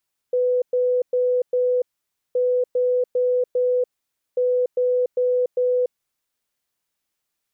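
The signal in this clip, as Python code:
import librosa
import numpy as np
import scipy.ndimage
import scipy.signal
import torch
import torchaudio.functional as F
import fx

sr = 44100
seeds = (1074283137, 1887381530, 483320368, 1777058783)

y = fx.beep_pattern(sr, wave='sine', hz=498.0, on_s=0.29, off_s=0.11, beeps=4, pause_s=0.53, groups=3, level_db=-16.5)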